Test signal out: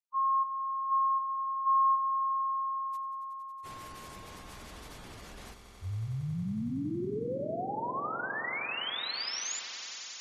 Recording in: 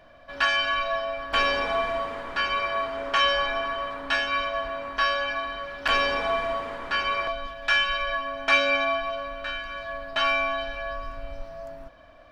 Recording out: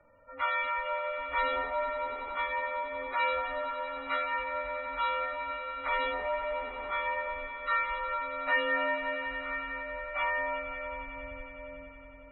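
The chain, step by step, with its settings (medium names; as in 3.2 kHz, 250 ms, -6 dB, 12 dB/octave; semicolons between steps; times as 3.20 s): frequency axis rescaled in octaves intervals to 89%; spectral gate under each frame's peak -20 dB strong; echo with a slow build-up 92 ms, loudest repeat 5, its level -14.5 dB; trim -6.5 dB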